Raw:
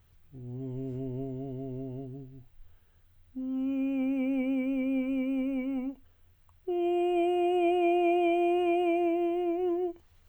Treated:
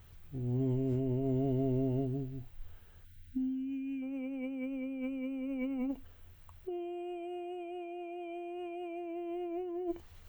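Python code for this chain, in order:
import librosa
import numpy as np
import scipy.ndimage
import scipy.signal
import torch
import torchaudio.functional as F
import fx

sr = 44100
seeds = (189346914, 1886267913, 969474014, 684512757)

y = fx.spec_box(x, sr, start_s=3.05, length_s=0.97, low_hz=320.0, high_hz=1400.0, gain_db=-19)
y = fx.over_compress(y, sr, threshold_db=-37.0, ratio=-1.0)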